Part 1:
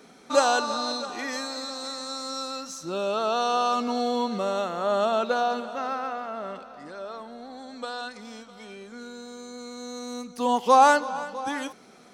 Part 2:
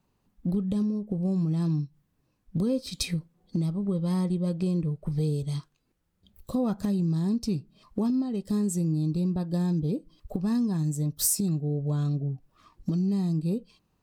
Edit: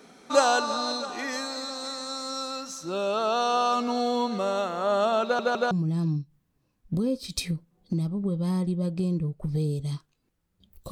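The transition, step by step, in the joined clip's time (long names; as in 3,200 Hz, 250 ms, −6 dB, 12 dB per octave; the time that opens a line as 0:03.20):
part 1
0:05.23: stutter in place 0.16 s, 3 plays
0:05.71: continue with part 2 from 0:01.34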